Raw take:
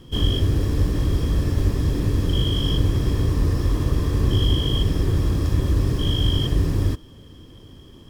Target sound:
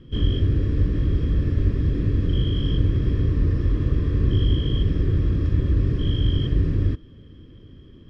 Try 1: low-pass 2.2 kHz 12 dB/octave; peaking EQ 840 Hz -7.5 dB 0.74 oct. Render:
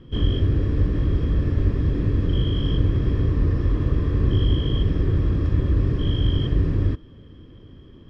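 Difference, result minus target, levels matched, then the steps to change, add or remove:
1 kHz band +5.0 dB
change: peaking EQ 840 Hz -18 dB 0.74 oct

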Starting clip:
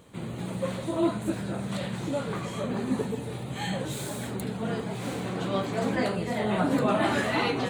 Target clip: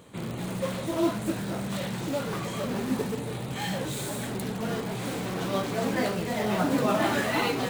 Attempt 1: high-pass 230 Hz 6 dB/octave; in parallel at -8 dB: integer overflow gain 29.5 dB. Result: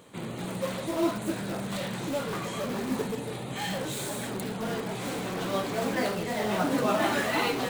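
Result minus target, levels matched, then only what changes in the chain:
125 Hz band -2.5 dB
change: high-pass 76 Hz 6 dB/octave

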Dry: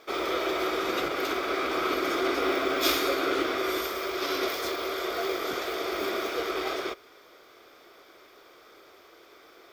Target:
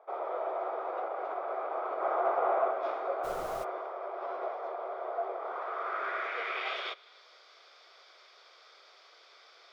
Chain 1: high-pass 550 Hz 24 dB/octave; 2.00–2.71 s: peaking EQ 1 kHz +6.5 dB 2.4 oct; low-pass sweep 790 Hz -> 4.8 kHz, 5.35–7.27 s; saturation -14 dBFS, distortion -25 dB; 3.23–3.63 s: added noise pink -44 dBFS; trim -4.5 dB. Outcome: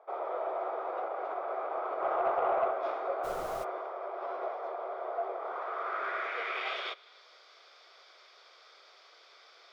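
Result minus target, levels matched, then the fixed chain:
saturation: distortion +11 dB
high-pass 550 Hz 24 dB/octave; 2.00–2.71 s: peaking EQ 1 kHz +6.5 dB 2.4 oct; low-pass sweep 790 Hz -> 4.8 kHz, 5.35–7.27 s; saturation -8 dBFS, distortion -36 dB; 3.23–3.63 s: added noise pink -44 dBFS; trim -4.5 dB

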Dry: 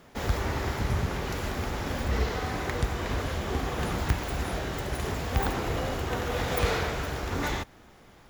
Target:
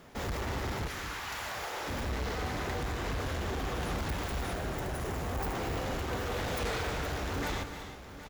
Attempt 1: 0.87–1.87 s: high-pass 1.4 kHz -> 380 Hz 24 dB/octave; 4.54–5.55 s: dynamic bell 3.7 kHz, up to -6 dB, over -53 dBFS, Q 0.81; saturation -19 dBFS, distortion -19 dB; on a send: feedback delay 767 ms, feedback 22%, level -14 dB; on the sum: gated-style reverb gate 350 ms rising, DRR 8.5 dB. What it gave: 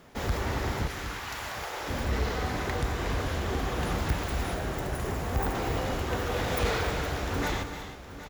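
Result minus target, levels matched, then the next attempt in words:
saturation: distortion -11 dB
0.87–1.87 s: high-pass 1.4 kHz -> 380 Hz 24 dB/octave; 4.54–5.55 s: dynamic bell 3.7 kHz, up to -6 dB, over -53 dBFS, Q 0.81; saturation -31 dBFS, distortion -8 dB; on a send: feedback delay 767 ms, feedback 22%, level -14 dB; on the sum: gated-style reverb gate 350 ms rising, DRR 8.5 dB

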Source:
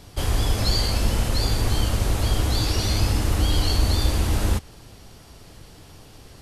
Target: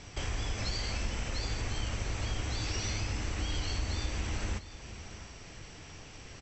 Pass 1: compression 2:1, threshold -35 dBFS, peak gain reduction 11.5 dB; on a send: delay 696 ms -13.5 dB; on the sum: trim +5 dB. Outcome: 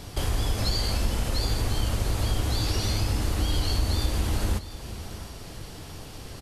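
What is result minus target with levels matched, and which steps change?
8 kHz band -2.5 dB
add after compression: rippled Chebyshev low-pass 7.9 kHz, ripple 9 dB

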